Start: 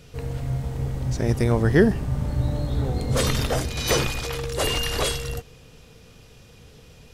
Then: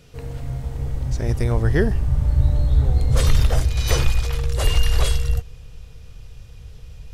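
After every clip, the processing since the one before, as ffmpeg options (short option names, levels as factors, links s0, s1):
-af "asubboost=boost=10:cutoff=79,volume=0.794"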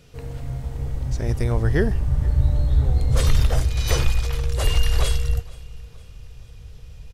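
-af "aecho=1:1:468|936|1404:0.0708|0.0319|0.0143,volume=0.841"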